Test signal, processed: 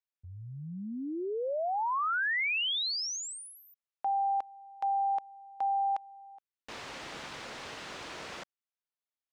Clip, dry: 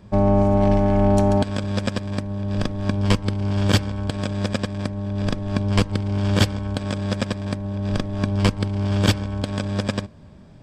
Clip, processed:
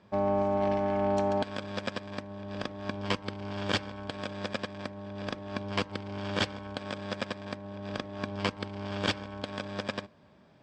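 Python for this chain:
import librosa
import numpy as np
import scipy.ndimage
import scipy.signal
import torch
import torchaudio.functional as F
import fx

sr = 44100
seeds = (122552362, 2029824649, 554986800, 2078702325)

y = fx.highpass(x, sr, hz=620.0, slope=6)
y = fx.air_absorb(y, sr, metres=120.0)
y = y * librosa.db_to_amplitude(-3.5)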